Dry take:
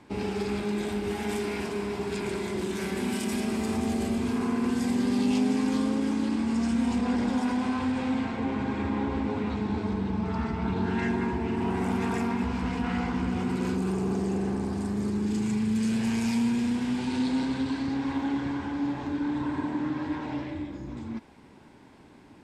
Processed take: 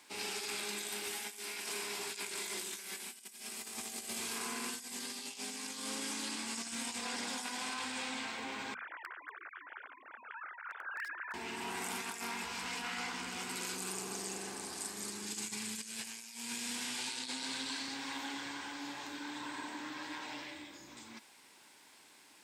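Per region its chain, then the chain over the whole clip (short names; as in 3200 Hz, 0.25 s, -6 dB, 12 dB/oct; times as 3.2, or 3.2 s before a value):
8.74–11.34 sine-wave speech + band-pass 1500 Hz, Q 4.2 + hard clip -30.5 dBFS
whole clip: differentiator; notches 50/100/150/200/250 Hz; negative-ratio compressor -49 dBFS, ratio -0.5; gain +8.5 dB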